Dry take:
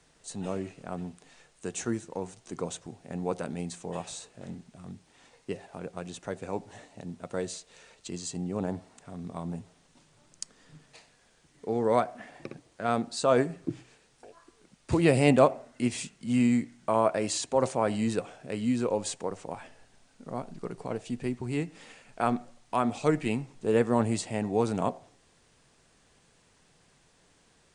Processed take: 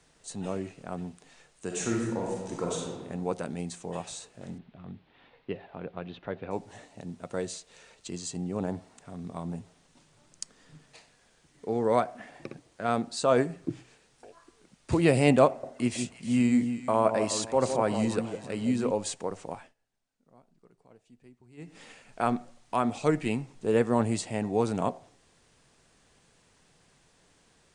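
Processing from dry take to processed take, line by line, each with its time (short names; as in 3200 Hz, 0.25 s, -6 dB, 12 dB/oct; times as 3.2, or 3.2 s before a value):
1.66–2.93 reverb throw, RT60 1.3 s, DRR -2.5 dB
4.58–6.51 steep low-pass 3800 Hz
15.47–18.91 echo with dull and thin repeats by turns 0.161 s, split 900 Hz, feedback 52%, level -6.5 dB
19.53–21.78 dip -23 dB, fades 0.21 s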